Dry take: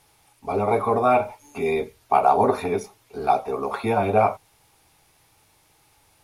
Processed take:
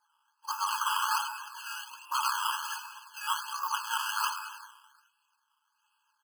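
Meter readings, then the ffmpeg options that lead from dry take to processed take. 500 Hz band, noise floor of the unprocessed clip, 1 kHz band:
under -40 dB, -61 dBFS, -10.0 dB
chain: -filter_complex "[0:a]lowpass=f=3.4k:w=0.5412,lowpass=f=3.4k:w=1.3066,agate=range=-9dB:threshold=-53dB:ratio=16:detection=peak,afftfilt=real='re*lt(hypot(re,im),0.398)':imag='im*lt(hypot(re,im),0.398)':win_size=1024:overlap=0.75,aeval=exprs='0.237*(cos(1*acos(clip(val(0)/0.237,-1,1)))-cos(1*PI/2))+0.015*(cos(6*acos(clip(val(0)/0.237,-1,1)))-cos(6*PI/2))':c=same,lowshelf=f=230:g=-4.5,asplit=2[a][b];[b]alimiter=limit=-19.5dB:level=0:latency=1:release=38,volume=-3dB[c];[a][c]amix=inputs=2:normalize=0,asplit=8[d][e][f][g][h][i][j][k];[e]adelay=106,afreqshift=110,volume=-11dB[l];[f]adelay=212,afreqshift=220,volume=-15.6dB[m];[g]adelay=318,afreqshift=330,volume=-20.2dB[n];[h]adelay=424,afreqshift=440,volume=-24.7dB[o];[i]adelay=530,afreqshift=550,volume=-29.3dB[p];[j]adelay=636,afreqshift=660,volume=-33.9dB[q];[k]adelay=742,afreqshift=770,volume=-38.5dB[r];[d][l][m][n][o][p][q][r]amix=inputs=8:normalize=0,flanger=delay=5.9:depth=5.6:regen=-15:speed=0.57:shape=sinusoidal,acrusher=samples=14:mix=1:aa=0.000001:lfo=1:lforange=14:lforate=1.3,asubboost=boost=12:cutoff=180,afftfilt=real='re*eq(mod(floor(b*sr/1024/840),2),1)':imag='im*eq(mod(floor(b*sr/1024/840),2),1)':win_size=1024:overlap=0.75,volume=1.5dB"

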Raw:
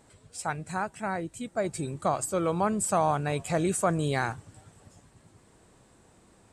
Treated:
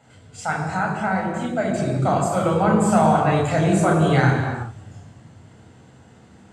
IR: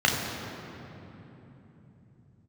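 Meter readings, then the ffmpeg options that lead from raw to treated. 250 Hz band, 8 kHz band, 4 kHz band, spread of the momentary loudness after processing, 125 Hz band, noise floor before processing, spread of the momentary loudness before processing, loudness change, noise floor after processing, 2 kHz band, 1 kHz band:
+11.5 dB, 0.0 dB, +7.0 dB, 10 LU, +12.5 dB, -60 dBFS, 9 LU, +9.0 dB, -49 dBFS, +10.0 dB, +8.5 dB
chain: -filter_complex "[1:a]atrim=start_sample=2205,afade=t=out:st=0.44:d=0.01,atrim=end_sample=19845[a];[0:a][a]afir=irnorm=-1:irlink=0,volume=-7.5dB"

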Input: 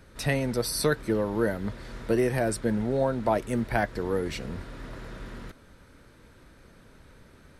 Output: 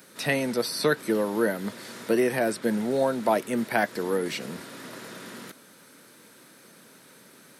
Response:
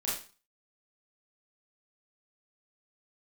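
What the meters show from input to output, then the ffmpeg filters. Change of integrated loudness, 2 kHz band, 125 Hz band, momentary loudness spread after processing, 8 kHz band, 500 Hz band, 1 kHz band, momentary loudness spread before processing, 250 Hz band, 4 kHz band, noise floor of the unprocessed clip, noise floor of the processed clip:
+1.5 dB, +3.5 dB, -7.0 dB, 16 LU, -0.5 dB, +1.5 dB, +2.0 dB, 16 LU, +1.0 dB, +3.0 dB, -55 dBFS, -53 dBFS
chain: -filter_complex "[0:a]highpass=f=170:w=0.5412,highpass=f=170:w=1.3066,aemphasis=mode=production:type=75kf,acrossover=split=4000[a][b];[b]acompressor=threshold=-41dB:ratio=4:attack=1:release=60[c];[a][c]amix=inputs=2:normalize=0,volume=1.5dB"

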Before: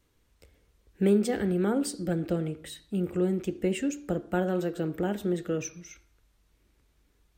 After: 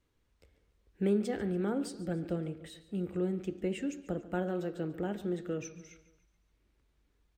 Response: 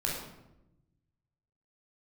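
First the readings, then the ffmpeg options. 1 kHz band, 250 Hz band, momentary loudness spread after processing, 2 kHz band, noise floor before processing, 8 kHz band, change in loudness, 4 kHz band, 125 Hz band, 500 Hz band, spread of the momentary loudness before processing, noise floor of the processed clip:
-6.0 dB, -6.0 dB, 9 LU, -6.5 dB, -69 dBFS, -10.5 dB, -6.0 dB, -7.5 dB, -6.0 dB, -6.0 dB, 9 LU, -75 dBFS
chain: -filter_complex "[0:a]highshelf=f=7.6k:g=-10,asplit=2[a][b];[b]aecho=0:1:143|286|429|572:0.133|0.068|0.0347|0.0177[c];[a][c]amix=inputs=2:normalize=0,volume=-6dB"

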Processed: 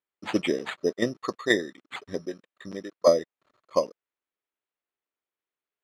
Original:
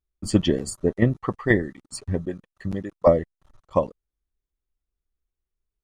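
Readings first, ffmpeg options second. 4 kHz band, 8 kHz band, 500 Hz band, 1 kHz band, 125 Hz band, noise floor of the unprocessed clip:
+2.0 dB, -5.0 dB, -2.0 dB, -3.0 dB, -17.0 dB, under -85 dBFS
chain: -af "equalizer=f=830:t=o:w=0.3:g=-12,bandreject=f=1.5k:w=22,acrusher=samples=8:mix=1:aa=0.000001,highpass=360,lowpass=4.8k"

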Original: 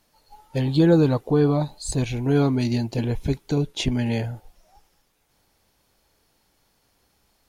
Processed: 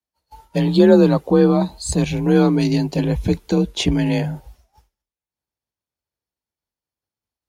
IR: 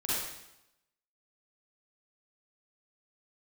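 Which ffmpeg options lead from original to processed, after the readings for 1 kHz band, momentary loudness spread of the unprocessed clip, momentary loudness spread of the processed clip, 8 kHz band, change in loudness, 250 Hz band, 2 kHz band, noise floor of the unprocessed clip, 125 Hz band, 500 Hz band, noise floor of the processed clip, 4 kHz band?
+5.5 dB, 10 LU, 9 LU, +5.0 dB, +5.0 dB, +5.5 dB, +5.0 dB, -67 dBFS, +2.0 dB, +6.5 dB, under -85 dBFS, +5.0 dB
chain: -af "agate=range=-33dB:threshold=-47dB:ratio=3:detection=peak,afreqshift=36,volume=5dB"

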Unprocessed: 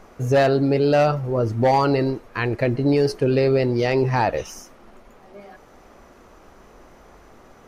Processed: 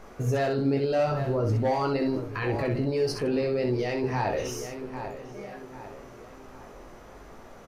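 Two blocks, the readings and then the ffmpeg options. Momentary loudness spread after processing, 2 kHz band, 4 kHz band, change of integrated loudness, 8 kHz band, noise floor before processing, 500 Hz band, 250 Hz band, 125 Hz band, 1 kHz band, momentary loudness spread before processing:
20 LU, -7.5 dB, -6.0 dB, -7.5 dB, -1.5 dB, -50 dBFS, -7.0 dB, -6.5 dB, -6.0 dB, -8.0 dB, 7 LU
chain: -filter_complex "[0:a]asplit=2[a][b];[b]adelay=797,lowpass=f=4k:p=1,volume=-17.5dB,asplit=2[c][d];[d]adelay=797,lowpass=f=4k:p=1,volume=0.46,asplit=2[e][f];[f]adelay=797,lowpass=f=4k:p=1,volume=0.46,asplit=2[g][h];[h]adelay=797,lowpass=f=4k:p=1,volume=0.46[i];[c][e][g][i]amix=inputs=4:normalize=0[j];[a][j]amix=inputs=2:normalize=0,alimiter=limit=-20dB:level=0:latency=1:release=14,asplit=2[k][l];[l]aecho=0:1:19|65:0.501|0.531[m];[k][m]amix=inputs=2:normalize=0,volume=-1.5dB"

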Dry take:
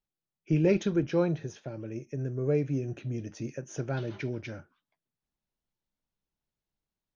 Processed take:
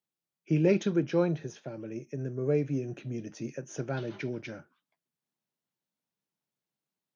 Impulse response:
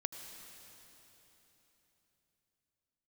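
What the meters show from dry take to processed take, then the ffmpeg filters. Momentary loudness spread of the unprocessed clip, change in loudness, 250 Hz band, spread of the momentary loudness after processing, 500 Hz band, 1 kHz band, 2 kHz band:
14 LU, -0.5 dB, 0.0 dB, 15 LU, 0.0 dB, 0.0 dB, 0.0 dB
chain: -af "highpass=f=130:w=0.5412,highpass=f=130:w=1.3066"

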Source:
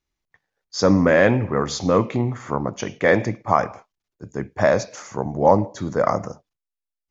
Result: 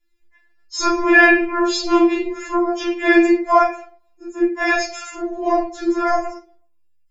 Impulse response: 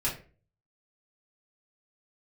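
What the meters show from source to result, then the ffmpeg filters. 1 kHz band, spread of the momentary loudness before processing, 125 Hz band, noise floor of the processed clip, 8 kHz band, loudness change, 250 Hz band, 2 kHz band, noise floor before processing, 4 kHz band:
+3.5 dB, 15 LU, under -30 dB, -57 dBFS, n/a, +3.5 dB, +5.0 dB, +9.0 dB, under -85 dBFS, +5.5 dB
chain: -filter_complex "[1:a]atrim=start_sample=2205[a];[0:a][a]afir=irnorm=-1:irlink=0,afftfilt=real='re*4*eq(mod(b,16),0)':imag='im*4*eq(mod(b,16),0)':win_size=2048:overlap=0.75,volume=3.5dB"

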